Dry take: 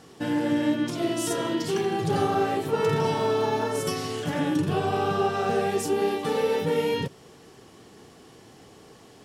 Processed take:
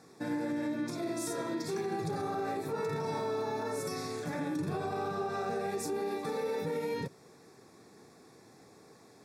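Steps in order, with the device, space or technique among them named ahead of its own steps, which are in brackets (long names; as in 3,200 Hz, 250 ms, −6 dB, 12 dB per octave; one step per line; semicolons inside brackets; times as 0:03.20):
PA system with an anti-feedback notch (high-pass filter 110 Hz; Butterworth band-reject 3,000 Hz, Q 3.3; brickwall limiter −20 dBFS, peak gain reduction 8 dB)
level −6.5 dB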